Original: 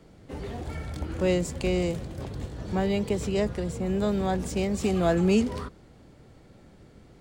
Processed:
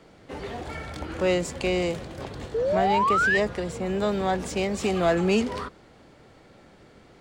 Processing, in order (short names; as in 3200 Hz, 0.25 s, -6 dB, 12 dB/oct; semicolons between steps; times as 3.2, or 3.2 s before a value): painted sound rise, 2.54–3.38, 430–1900 Hz -27 dBFS; overdrive pedal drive 12 dB, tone 3900 Hz, clips at -11.5 dBFS